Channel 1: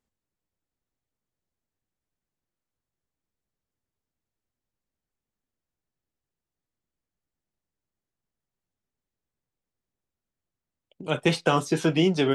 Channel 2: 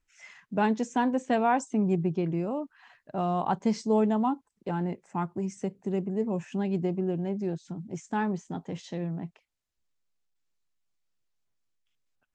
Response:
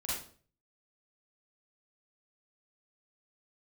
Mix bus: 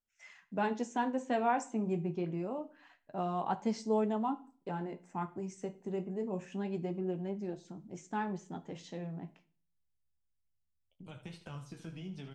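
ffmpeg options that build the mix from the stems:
-filter_complex "[0:a]acompressor=threshold=-31dB:ratio=4,flanger=delay=8.9:depth=9.6:regen=60:speed=0.63:shape=triangular,asubboost=boost=8:cutoff=130,volume=-7.5dB,asplit=2[link_01][link_02];[link_02]volume=-11.5dB[link_03];[1:a]agate=range=-13dB:threshold=-56dB:ratio=16:detection=peak,bass=frequency=250:gain=-4,treble=frequency=4000:gain=0,volume=-2.5dB,asplit=2[link_04][link_05];[link_05]volume=-18.5dB[link_06];[2:a]atrim=start_sample=2205[link_07];[link_06][link_07]afir=irnorm=-1:irlink=0[link_08];[link_03]aecho=0:1:77|154|231|308|385:1|0.37|0.137|0.0507|0.0187[link_09];[link_01][link_04][link_08][link_09]amix=inputs=4:normalize=0,flanger=delay=9:depth=8.9:regen=-49:speed=0.26:shape=sinusoidal"

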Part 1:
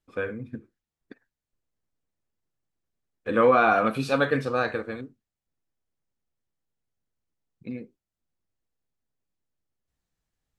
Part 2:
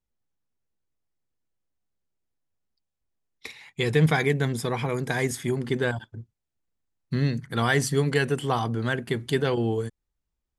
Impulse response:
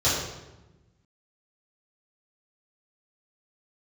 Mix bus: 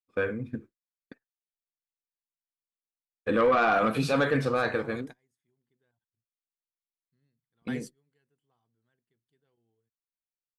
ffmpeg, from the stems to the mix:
-filter_complex "[0:a]agate=range=-33dB:threshold=-41dB:ratio=3:detection=peak,asoftclip=type=tanh:threshold=-14dB,volume=2dB,asplit=2[link_01][link_02];[1:a]volume=-18.5dB[link_03];[link_02]apad=whole_len=466973[link_04];[link_03][link_04]sidechaingate=range=-33dB:threshold=-40dB:ratio=16:detection=peak[link_05];[link_01][link_05]amix=inputs=2:normalize=0,alimiter=limit=-16.5dB:level=0:latency=1:release=34"

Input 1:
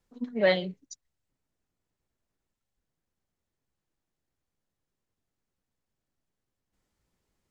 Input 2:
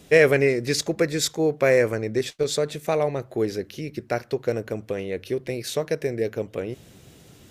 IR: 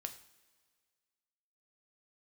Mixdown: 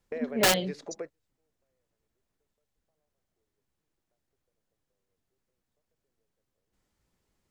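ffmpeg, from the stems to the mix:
-filter_complex "[0:a]aeval=exprs='(mod(7.5*val(0)+1,2)-1)/7.5':channel_layout=same,volume=1.5dB,asplit=2[link_01][link_02];[1:a]bandpass=frequency=720:width_type=q:width=1.1:csg=0,acompressor=threshold=-29dB:ratio=5,volume=-6dB[link_03];[link_02]apad=whole_len=331025[link_04];[link_03][link_04]sidechaingate=range=-46dB:threshold=-58dB:ratio=16:detection=peak[link_05];[link_01][link_05]amix=inputs=2:normalize=0"

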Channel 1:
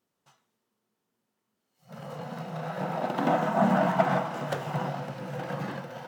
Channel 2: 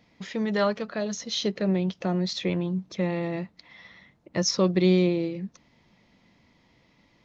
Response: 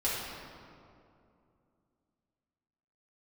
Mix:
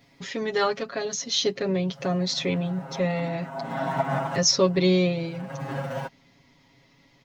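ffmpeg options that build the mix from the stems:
-filter_complex "[0:a]aecho=1:1:7.4:0.87,acompressor=threshold=-27dB:ratio=10,volume=2dB[link_01];[1:a]highshelf=frequency=5800:gain=7.5,volume=-0.5dB,asplit=2[link_02][link_03];[link_03]apad=whole_len=268320[link_04];[link_01][link_04]sidechaincompress=threshold=-45dB:ratio=4:attack=11:release=404[link_05];[link_05][link_02]amix=inputs=2:normalize=0,aecho=1:1:7.3:0.99"

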